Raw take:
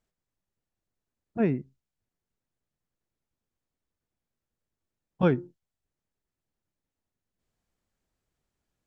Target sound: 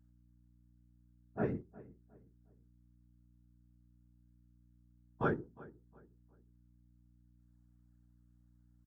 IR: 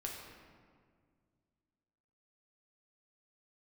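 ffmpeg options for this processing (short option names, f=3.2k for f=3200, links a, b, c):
-filter_complex "[0:a]highshelf=f=1.9k:t=q:w=3:g=-6.5,bandreject=f=60:t=h:w=6,bandreject=f=120:t=h:w=6,bandreject=f=180:t=h:w=6,bandreject=f=240:t=h:w=6,bandreject=f=300:t=h:w=6,afftfilt=real='hypot(re,im)*cos(2*PI*random(0))':imag='hypot(re,im)*sin(2*PI*random(1))':win_size=512:overlap=0.75,asplit=2[a][b];[b]adelay=359,lowpass=f=1.7k:p=1,volume=-19.5dB,asplit=2[c][d];[d]adelay=359,lowpass=f=1.7k:p=1,volume=0.34,asplit=2[e][f];[f]adelay=359,lowpass=f=1.7k:p=1,volume=0.34[g];[c][e][g]amix=inputs=3:normalize=0[h];[a][h]amix=inputs=2:normalize=0,aeval=exprs='val(0)+0.001*(sin(2*PI*60*n/s)+sin(2*PI*2*60*n/s)/2+sin(2*PI*3*60*n/s)/3+sin(2*PI*4*60*n/s)/4+sin(2*PI*5*60*n/s)/5)':c=same,bandreject=f=530:w=12,crystalizer=i=1:c=0,highpass=f=74:p=1,equalizer=f=260:w=1.5:g=-2.5,volume=-1.5dB"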